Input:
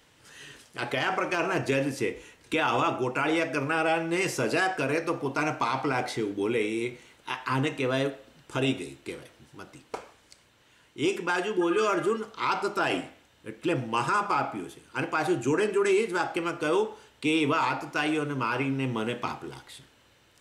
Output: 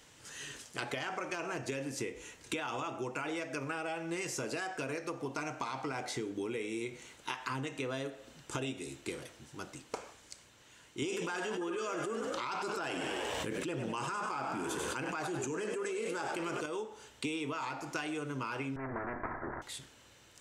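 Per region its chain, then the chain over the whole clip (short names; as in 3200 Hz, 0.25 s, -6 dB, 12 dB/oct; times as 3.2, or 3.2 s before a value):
11.02–16.66 frequency-shifting echo 97 ms, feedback 51%, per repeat +49 Hz, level -10.5 dB + fast leveller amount 100%
18.76–19.62 minimum comb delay 3 ms + steep low-pass 1800 Hz 72 dB/oct + spectral compressor 2:1
whole clip: bell 6900 Hz +7.5 dB 0.76 oct; compressor 12:1, threshold -34 dBFS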